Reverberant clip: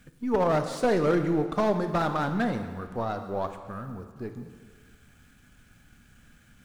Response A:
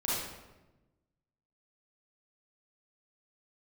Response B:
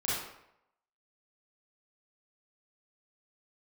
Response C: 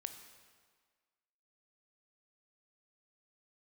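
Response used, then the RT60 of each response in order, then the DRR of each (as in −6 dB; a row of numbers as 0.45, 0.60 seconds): C; 1.1, 0.80, 1.7 seconds; −8.5, −9.0, 7.5 decibels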